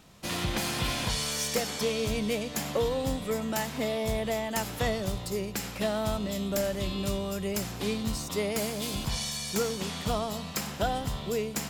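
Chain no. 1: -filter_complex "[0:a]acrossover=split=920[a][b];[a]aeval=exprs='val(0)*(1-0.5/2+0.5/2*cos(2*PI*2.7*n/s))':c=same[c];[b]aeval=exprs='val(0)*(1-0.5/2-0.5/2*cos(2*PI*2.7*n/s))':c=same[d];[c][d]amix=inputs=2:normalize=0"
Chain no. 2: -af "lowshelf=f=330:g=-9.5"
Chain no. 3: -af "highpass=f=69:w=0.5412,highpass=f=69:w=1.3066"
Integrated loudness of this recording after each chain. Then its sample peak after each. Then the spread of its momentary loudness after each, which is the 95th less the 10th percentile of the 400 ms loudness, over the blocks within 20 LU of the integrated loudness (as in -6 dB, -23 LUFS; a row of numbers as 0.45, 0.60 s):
-33.0, -33.0, -31.0 LUFS; -16.0, -15.5, -14.5 dBFS; 4, 5, 4 LU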